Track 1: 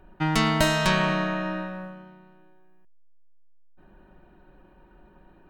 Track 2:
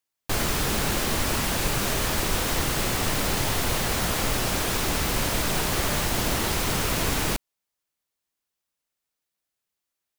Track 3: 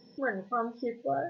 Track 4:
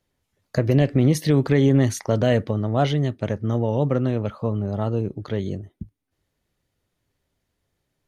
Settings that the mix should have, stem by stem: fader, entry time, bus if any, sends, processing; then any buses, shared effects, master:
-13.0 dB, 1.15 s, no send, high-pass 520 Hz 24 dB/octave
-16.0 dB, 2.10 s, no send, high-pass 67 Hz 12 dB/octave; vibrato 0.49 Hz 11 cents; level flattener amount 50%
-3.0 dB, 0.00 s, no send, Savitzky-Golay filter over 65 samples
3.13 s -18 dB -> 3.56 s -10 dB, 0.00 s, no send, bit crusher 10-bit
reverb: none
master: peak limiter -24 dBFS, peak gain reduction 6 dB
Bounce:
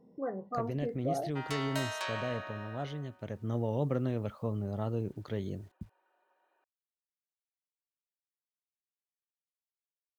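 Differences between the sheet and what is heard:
stem 2: muted; master: missing peak limiter -24 dBFS, peak gain reduction 6 dB

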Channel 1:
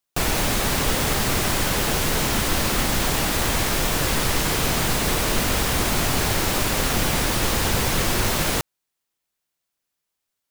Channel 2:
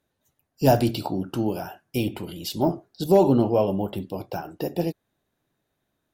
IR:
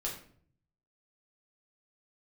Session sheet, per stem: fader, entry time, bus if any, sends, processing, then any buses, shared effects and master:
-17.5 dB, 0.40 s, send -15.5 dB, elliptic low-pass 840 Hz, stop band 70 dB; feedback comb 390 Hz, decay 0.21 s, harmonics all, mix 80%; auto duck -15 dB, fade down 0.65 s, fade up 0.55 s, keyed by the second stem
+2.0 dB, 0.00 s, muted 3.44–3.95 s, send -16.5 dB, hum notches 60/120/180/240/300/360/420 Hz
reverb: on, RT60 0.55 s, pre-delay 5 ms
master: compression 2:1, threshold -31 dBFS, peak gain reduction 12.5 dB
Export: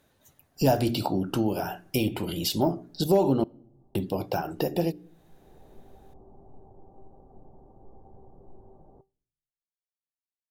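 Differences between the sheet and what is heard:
stem 2 +2.0 dB -> +10.5 dB; reverb return -9.0 dB

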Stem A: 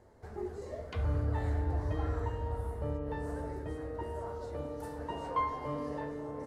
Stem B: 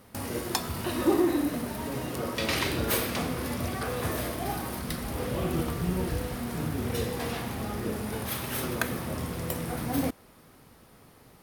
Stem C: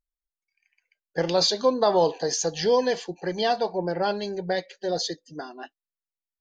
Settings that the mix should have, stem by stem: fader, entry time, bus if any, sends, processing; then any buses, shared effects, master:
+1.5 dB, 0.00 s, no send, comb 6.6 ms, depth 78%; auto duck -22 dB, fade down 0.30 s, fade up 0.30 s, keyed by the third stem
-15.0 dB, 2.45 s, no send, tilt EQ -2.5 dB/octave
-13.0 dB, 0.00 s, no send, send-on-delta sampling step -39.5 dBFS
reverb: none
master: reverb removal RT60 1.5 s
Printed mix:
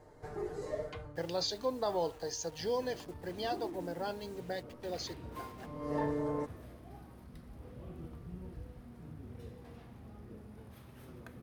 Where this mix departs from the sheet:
stem B -15.0 dB -> -23.5 dB; master: missing reverb removal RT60 1.5 s

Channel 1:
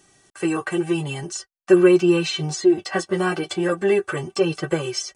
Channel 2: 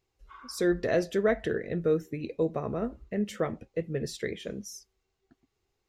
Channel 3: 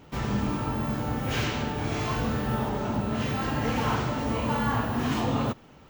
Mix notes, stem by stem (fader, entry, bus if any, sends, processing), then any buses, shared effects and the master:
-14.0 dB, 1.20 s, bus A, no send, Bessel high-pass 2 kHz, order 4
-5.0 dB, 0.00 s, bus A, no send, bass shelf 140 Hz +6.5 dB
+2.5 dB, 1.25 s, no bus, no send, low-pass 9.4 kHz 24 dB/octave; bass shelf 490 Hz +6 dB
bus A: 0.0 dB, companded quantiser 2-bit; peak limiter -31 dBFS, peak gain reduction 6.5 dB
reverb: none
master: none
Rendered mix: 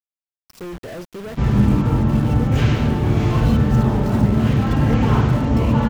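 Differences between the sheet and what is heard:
stem 1: missing Bessel high-pass 2 kHz, order 4; stem 2: missing bass shelf 140 Hz +6.5 dB; master: extra tone controls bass +7 dB, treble -5 dB

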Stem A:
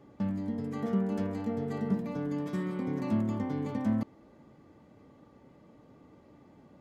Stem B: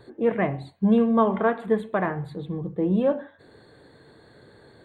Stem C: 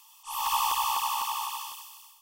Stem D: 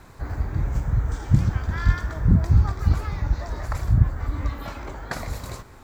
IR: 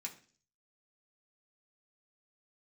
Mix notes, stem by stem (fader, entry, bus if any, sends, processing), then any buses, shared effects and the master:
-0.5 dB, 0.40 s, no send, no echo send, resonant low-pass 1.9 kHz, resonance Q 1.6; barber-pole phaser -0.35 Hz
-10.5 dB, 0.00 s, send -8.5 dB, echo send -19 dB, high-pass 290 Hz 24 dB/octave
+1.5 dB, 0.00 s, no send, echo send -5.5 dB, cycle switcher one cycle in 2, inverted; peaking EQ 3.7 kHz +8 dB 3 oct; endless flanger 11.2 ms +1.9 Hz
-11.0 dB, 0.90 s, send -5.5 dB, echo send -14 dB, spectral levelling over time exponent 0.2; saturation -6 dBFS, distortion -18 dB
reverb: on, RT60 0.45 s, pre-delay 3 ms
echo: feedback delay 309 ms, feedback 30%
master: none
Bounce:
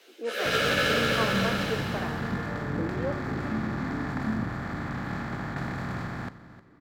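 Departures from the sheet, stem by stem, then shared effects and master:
stem D: entry 0.90 s -> 0.45 s; master: extra three-band isolator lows -19 dB, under 150 Hz, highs -14 dB, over 4.3 kHz

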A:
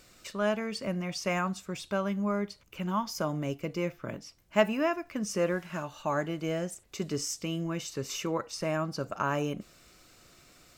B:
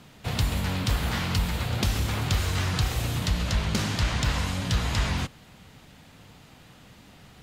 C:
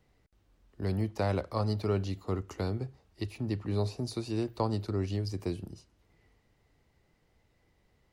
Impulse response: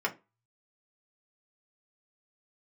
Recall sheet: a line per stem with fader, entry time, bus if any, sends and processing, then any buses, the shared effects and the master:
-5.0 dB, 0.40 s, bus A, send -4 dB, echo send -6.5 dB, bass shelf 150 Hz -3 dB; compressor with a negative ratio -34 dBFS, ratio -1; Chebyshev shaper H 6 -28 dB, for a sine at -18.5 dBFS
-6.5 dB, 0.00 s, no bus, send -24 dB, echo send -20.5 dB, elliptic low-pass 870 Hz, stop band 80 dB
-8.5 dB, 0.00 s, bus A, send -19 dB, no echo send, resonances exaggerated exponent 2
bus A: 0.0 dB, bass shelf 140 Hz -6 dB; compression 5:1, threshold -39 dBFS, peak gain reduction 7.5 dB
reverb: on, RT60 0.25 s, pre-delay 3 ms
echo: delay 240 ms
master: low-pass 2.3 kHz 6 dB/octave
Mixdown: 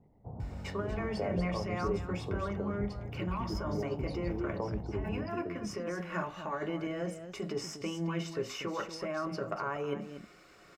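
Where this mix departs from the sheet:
stem B -6.5 dB -> -13.0 dB; stem C -8.5 dB -> +2.5 dB

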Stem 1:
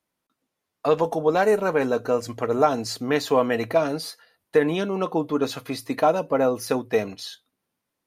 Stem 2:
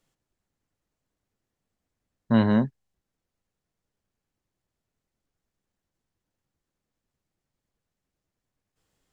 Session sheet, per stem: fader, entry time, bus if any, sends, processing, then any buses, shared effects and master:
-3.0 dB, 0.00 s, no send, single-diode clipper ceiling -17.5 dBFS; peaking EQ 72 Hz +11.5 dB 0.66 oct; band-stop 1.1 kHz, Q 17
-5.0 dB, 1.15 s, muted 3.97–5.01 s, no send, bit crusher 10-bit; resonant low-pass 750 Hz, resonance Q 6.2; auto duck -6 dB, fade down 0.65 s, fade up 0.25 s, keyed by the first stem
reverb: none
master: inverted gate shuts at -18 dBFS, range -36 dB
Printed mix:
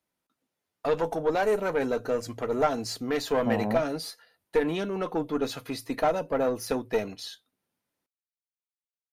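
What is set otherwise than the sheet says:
stem 1: missing peaking EQ 72 Hz +11.5 dB 0.66 oct; master: missing inverted gate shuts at -18 dBFS, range -36 dB

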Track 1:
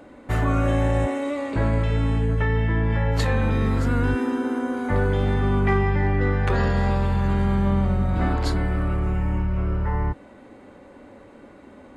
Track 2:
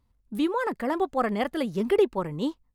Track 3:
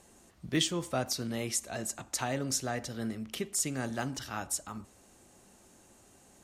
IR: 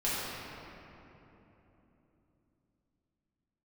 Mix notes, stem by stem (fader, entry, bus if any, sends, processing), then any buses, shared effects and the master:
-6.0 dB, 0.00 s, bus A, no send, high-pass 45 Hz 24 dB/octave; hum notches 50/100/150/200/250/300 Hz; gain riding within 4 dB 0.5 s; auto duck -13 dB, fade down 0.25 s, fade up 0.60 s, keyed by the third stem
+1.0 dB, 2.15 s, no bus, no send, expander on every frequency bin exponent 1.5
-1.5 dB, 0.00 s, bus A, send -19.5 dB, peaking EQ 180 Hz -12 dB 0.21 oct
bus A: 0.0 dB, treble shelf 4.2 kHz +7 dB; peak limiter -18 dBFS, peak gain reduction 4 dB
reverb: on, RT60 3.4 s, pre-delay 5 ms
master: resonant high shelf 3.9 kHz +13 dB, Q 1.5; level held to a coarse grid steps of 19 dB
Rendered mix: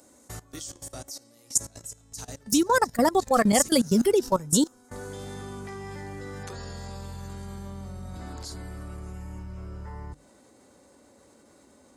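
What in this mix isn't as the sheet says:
stem 2 +1.0 dB -> +12.5 dB; stem 3 -1.5 dB -> -10.5 dB

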